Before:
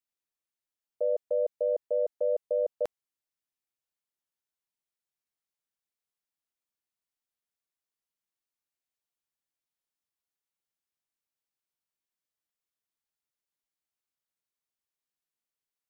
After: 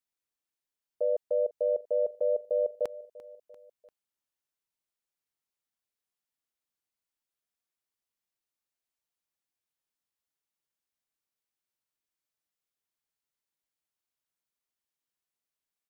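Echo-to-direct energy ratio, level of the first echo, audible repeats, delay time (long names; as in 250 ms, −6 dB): −17.5 dB, −19.0 dB, 3, 344 ms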